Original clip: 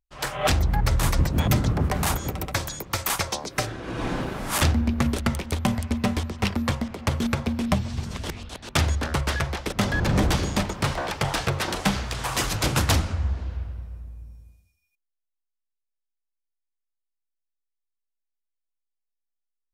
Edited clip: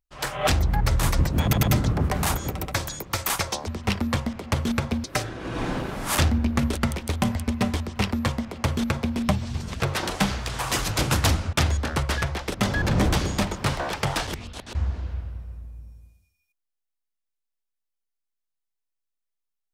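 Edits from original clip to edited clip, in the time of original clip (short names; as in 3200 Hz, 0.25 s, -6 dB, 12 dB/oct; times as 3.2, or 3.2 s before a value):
1.43 stutter 0.10 s, 3 plays
6.22–7.59 copy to 3.47
8.23–8.71 swap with 11.45–13.18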